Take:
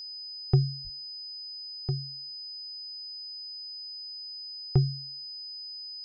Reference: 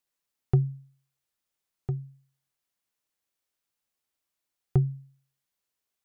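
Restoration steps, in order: band-stop 5 kHz, Q 30; 0.83–0.95 s: high-pass 140 Hz 24 dB/octave

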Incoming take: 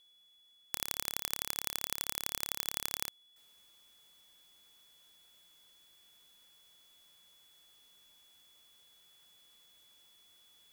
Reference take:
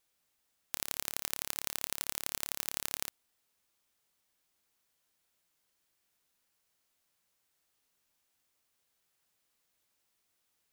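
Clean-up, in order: band-stop 3.4 kHz, Q 30; trim 0 dB, from 3.36 s -10.5 dB

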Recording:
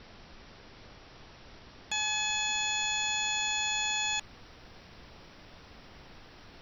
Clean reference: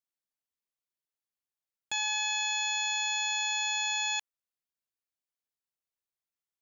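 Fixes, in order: noise print and reduce 30 dB; trim 0 dB, from 4.20 s -9 dB

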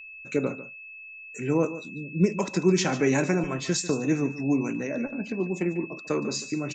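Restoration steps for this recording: band-stop 2.6 kHz, Q 30; inverse comb 145 ms -14.5 dB

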